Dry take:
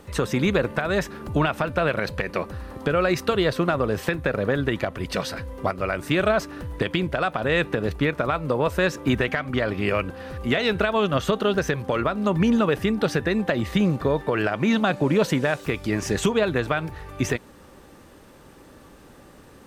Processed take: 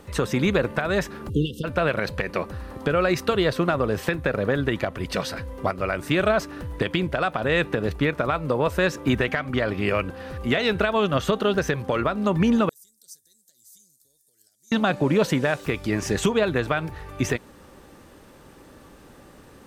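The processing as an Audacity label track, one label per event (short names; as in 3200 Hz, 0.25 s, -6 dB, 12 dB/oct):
1.300000	1.640000	spectral delete 530–2700 Hz
12.690000	14.720000	inverse Chebyshev high-pass stop band from 2800 Hz, stop band 50 dB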